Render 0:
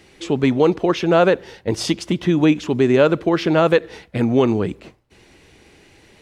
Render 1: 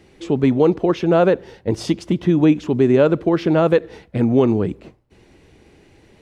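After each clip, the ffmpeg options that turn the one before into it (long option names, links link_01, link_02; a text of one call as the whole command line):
ffmpeg -i in.wav -af "tiltshelf=frequency=970:gain=4.5,volume=-2.5dB" out.wav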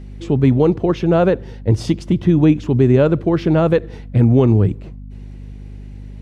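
ffmpeg -i in.wav -af "equalizer=frequency=100:width_type=o:width=1.2:gain=14,aeval=exprs='val(0)+0.0282*(sin(2*PI*50*n/s)+sin(2*PI*2*50*n/s)/2+sin(2*PI*3*50*n/s)/3+sin(2*PI*4*50*n/s)/4+sin(2*PI*5*50*n/s)/5)':channel_layout=same,volume=-1dB" out.wav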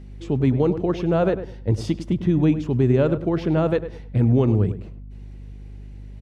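ffmpeg -i in.wav -filter_complex "[0:a]asplit=2[link_01][link_02];[link_02]adelay=102,lowpass=frequency=1800:poles=1,volume=-11dB,asplit=2[link_03][link_04];[link_04]adelay=102,lowpass=frequency=1800:poles=1,volume=0.22,asplit=2[link_05][link_06];[link_06]adelay=102,lowpass=frequency=1800:poles=1,volume=0.22[link_07];[link_01][link_03][link_05][link_07]amix=inputs=4:normalize=0,volume=-6dB" out.wav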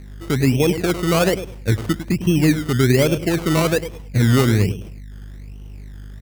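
ffmpeg -i in.wav -af "acrusher=samples=21:mix=1:aa=0.000001:lfo=1:lforange=12.6:lforate=1.2,volume=2.5dB" out.wav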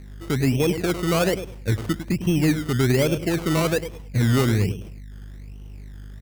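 ffmpeg -i in.wav -af "asoftclip=type=tanh:threshold=-7dB,volume=-3dB" out.wav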